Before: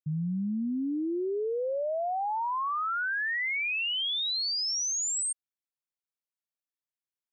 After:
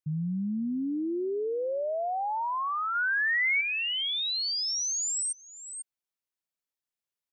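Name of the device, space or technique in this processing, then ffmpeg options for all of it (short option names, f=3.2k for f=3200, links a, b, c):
ducked delay: -filter_complex "[0:a]asettb=1/sr,asplit=3[a][b][c];[a]atrim=end=2.954[d];[b]atrim=start=2.95:end=3.61,asetpts=PTS-STARTPTS,afade=t=in:d=0.004:c=qsin,afade=t=out:st=0.656:d=0.004:c=qsin,highshelf=f=2.6k:g=12[e];[c]atrim=start=3.606[f];[d][e]acrossfade=d=0.004:c1=hsin:c2=qsin[g];[g][f]acrossfade=d=0.004:c1=qsin:c2=hsin,asplit=3[h][i][j];[i]adelay=494,volume=-5.5dB[k];[j]apad=whole_len=344957[l];[k][l]sidechaincompress=threshold=-51dB:ratio=8:attack=16:release=390[m];[h][m]amix=inputs=2:normalize=0"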